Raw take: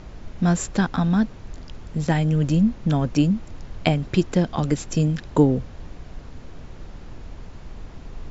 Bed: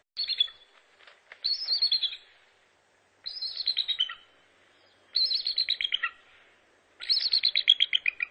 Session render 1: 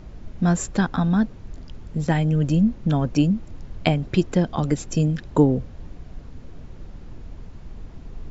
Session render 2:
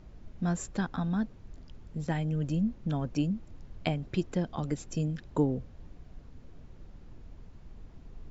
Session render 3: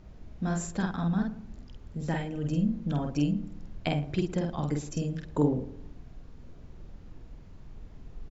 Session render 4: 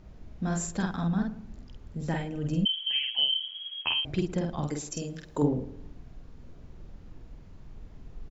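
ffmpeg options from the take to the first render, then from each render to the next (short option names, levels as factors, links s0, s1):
-af "afftdn=nr=6:nf=-41"
-af "volume=0.299"
-filter_complex "[0:a]asplit=2[s0][s1];[s1]adelay=48,volume=0.75[s2];[s0][s2]amix=inputs=2:normalize=0,asplit=2[s3][s4];[s4]adelay=112,lowpass=f=990:p=1,volume=0.211,asplit=2[s5][s6];[s6]adelay=112,lowpass=f=990:p=1,volume=0.45,asplit=2[s7][s8];[s8]adelay=112,lowpass=f=990:p=1,volume=0.45,asplit=2[s9][s10];[s10]adelay=112,lowpass=f=990:p=1,volume=0.45[s11];[s3][s5][s7][s9][s11]amix=inputs=5:normalize=0"
-filter_complex "[0:a]asettb=1/sr,asplit=3[s0][s1][s2];[s0]atrim=end=0.524[s3];[s1]atrim=start=0.52:end=1.07,asetpts=PTS-STARTPTS,afade=t=in:d=0.004:c=qsin,afade=t=out:st=0.546:d=0.004:c=qsin,highshelf=f=5700:g=6.5[s4];[s2]atrim=start=1.066[s5];[s3][s4]acrossfade=d=0.004:c1=hsin:c2=qsin[s6];[s6][s5]acrossfade=d=0.004:c1=qsin:c2=hsin,asettb=1/sr,asplit=3[s7][s8][s9];[s7]atrim=end=2.654[s10];[s8]atrim=start=2.65:end=4.05,asetpts=PTS-STARTPTS,afade=t=in:d=0.004:c=qsin,afade=t=out:st=1.396:d=0.004:c=qsin,lowpass=f=2800:t=q:w=0.5098,lowpass=f=2800:t=q:w=0.6013,lowpass=f=2800:t=q:w=0.9,lowpass=f=2800:t=q:w=2.563,afreqshift=-3300[s11];[s9]atrim=start=4.046[s12];[s10][s11]acrossfade=d=0.004:c1=hsin:c2=qsin[s13];[s13][s12]acrossfade=d=0.004:c1=qsin:c2=hsin,asettb=1/sr,asplit=3[s14][s15][s16];[s14]atrim=end=4.674[s17];[s15]atrim=start=4.67:end=5.42,asetpts=PTS-STARTPTS,afade=t=in:d=0.004:c=qsin,afade=t=out:st=0.746:d=0.004:c=qsin,bass=f=250:g=-8,treble=f=4000:g=7[s18];[s16]atrim=start=5.416[s19];[s17][s18]acrossfade=d=0.004:c1=hsin:c2=qsin[s20];[s20][s19]acrossfade=d=0.004:c1=qsin:c2=hsin"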